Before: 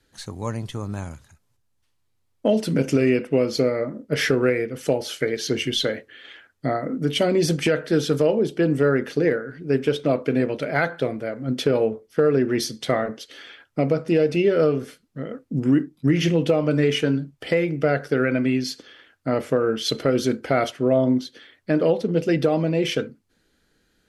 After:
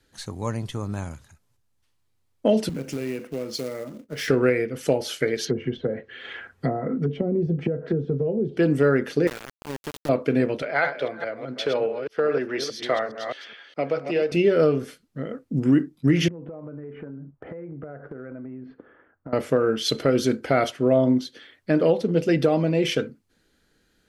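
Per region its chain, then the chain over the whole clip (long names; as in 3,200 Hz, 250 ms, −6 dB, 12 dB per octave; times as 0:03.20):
0:02.69–0:04.28: downward compressor 2.5 to 1, threshold −31 dBFS + floating-point word with a short mantissa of 2 bits + multiband upward and downward expander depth 70%
0:05.45–0:08.57: treble cut that deepens with the level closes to 370 Hz, closed at −17.5 dBFS + notch comb filter 300 Hz + multiband upward and downward compressor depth 70%
0:09.27–0:10.09: downward compressor 4 to 1, threshold −29 dBFS + centre clipping without the shift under −28 dBFS
0:10.62–0:14.32: delay that plays each chunk backwards 208 ms, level −7 dB + high-pass filter 55 Hz + three-way crossover with the lows and the highs turned down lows −14 dB, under 440 Hz, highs −16 dB, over 5,600 Hz
0:16.28–0:19.33: low-pass filter 1,400 Hz 24 dB per octave + downward compressor 20 to 1, threshold −33 dBFS
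whole clip: no processing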